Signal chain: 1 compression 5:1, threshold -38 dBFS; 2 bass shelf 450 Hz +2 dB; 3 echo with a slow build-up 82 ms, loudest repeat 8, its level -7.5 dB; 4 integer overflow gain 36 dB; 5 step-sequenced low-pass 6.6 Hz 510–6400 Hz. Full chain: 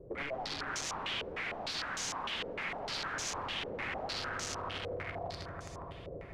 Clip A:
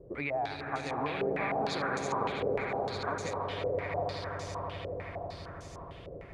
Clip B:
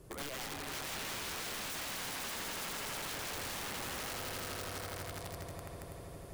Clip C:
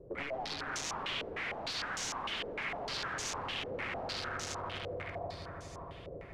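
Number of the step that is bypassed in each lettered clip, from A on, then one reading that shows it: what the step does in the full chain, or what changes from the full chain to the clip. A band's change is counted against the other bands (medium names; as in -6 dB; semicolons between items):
4, crest factor change +2.0 dB; 5, 8 kHz band +4.0 dB; 2, momentary loudness spread change +1 LU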